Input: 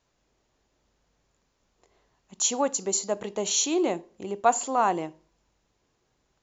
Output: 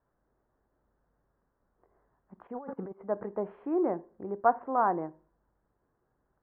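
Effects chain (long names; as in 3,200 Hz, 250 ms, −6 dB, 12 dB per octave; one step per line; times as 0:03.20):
0:02.47–0:03.02: compressor whose output falls as the input rises −36 dBFS, ratio −1
Butterworth low-pass 1,700 Hz 48 dB per octave
level −3 dB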